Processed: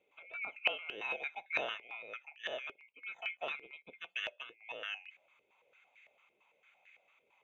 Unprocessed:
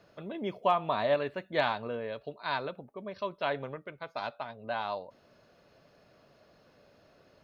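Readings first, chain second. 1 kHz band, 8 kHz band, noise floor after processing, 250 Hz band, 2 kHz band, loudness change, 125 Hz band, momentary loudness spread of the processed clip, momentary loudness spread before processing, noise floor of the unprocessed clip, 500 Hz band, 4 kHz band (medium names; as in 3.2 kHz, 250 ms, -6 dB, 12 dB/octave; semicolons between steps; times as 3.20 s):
-15.0 dB, no reading, -77 dBFS, -20.0 dB, 0.0 dB, -6.0 dB, under -25 dB, 13 LU, 14 LU, -63 dBFS, -14.5 dB, -0.5 dB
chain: split-band scrambler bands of 2 kHz; step-sequenced band-pass 8.9 Hz 410–1800 Hz; trim +8 dB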